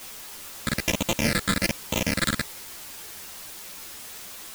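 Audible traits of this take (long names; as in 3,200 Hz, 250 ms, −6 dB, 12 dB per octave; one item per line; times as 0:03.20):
a buzz of ramps at a fixed pitch in blocks of 128 samples
phaser sweep stages 8, 1.2 Hz, lowest notch 800–1,600 Hz
a quantiser's noise floor 8 bits, dither triangular
a shimmering, thickened sound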